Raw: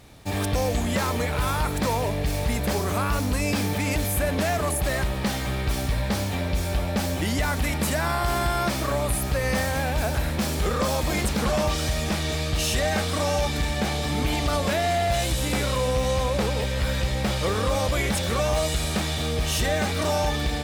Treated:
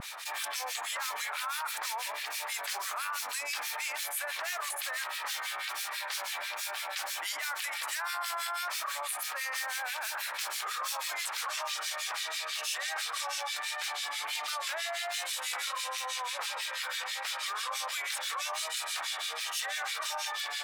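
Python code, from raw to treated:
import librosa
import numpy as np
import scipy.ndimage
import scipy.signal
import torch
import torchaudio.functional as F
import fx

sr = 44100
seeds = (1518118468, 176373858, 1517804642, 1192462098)

y = scipy.signal.sosfilt(scipy.signal.butter(4, 1000.0, 'highpass', fs=sr, output='sos'), x)
y = fx.vibrato(y, sr, rate_hz=1.4, depth_cents=37.0)
y = fx.harmonic_tremolo(y, sr, hz=6.1, depth_pct=100, crossover_hz=1600.0)
y = fx.env_flatten(y, sr, amount_pct=70)
y = F.gain(torch.from_numpy(y), -5.5).numpy()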